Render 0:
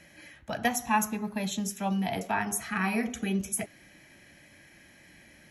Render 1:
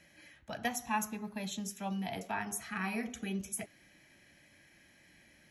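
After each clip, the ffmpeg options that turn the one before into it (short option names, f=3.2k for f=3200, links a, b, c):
-af "equalizer=f=4.1k:t=o:w=1.7:g=2.5,volume=-8dB"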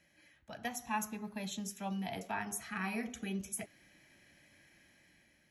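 -af "dynaudnorm=f=310:g=5:m=6dB,volume=-7.5dB"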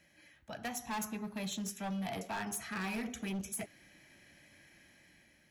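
-af "asoftclip=type=hard:threshold=-37.5dB,volume=3dB"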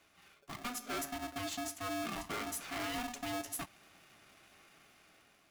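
-af "aeval=exprs='val(0)*sgn(sin(2*PI*490*n/s))':c=same,volume=-1dB"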